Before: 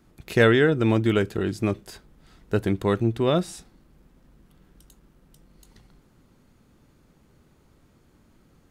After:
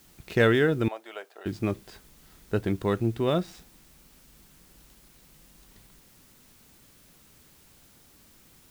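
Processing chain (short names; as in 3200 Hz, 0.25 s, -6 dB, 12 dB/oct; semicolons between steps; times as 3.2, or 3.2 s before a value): median filter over 5 samples; added noise white -55 dBFS; 0.88–1.46 ladder high-pass 590 Hz, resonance 55%; gain -3.5 dB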